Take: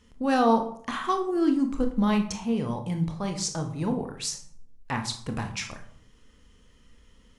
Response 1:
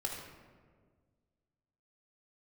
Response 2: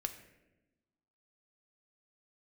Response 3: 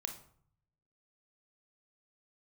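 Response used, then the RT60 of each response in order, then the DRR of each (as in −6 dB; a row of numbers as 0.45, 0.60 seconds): 3; 1.7, 1.0, 0.60 seconds; −1.5, 6.5, 5.0 decibels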